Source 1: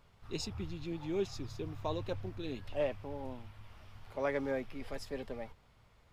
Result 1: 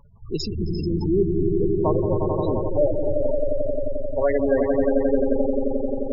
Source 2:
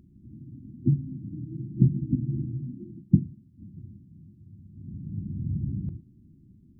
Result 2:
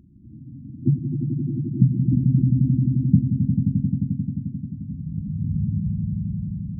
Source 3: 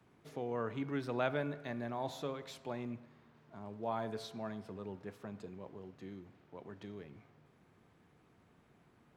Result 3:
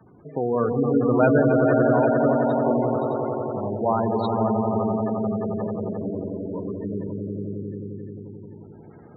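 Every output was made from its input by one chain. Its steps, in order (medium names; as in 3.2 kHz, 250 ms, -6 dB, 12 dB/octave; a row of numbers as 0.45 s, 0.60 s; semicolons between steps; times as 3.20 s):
echo with a slow build-up 88 ms, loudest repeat 5, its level -6 dB; spectral gate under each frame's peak -15 dB strong; normalise loudness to -23 LUFS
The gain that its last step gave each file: +13.0 dB, +3.5 dB, +15.0 dB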